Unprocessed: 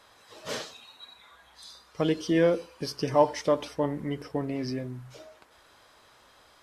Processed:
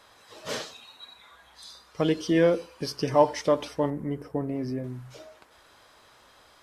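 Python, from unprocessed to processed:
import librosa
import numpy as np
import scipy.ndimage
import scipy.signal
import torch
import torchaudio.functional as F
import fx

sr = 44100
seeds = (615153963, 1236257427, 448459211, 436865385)

y = fx.peak_eq(x, sr, hz=3900.0, db=-13.0, octaves=2.3, at=(3.9, 4.84))
y = y * librosa.db_to_amplitude(1.5)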